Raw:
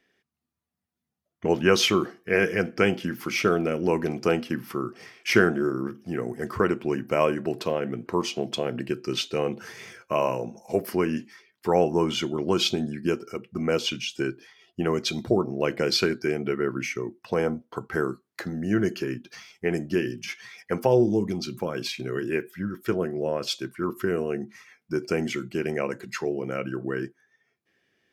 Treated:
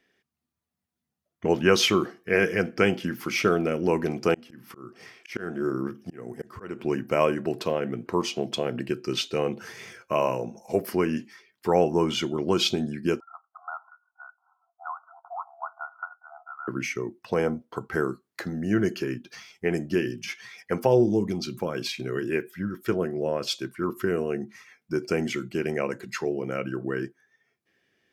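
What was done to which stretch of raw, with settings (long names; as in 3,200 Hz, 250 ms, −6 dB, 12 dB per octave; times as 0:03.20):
0:04.34–0:06.79: volume swells 356 ms
0:13.20–0:16.68: linear-phase brick-wall band-pass 670–1,500 Hz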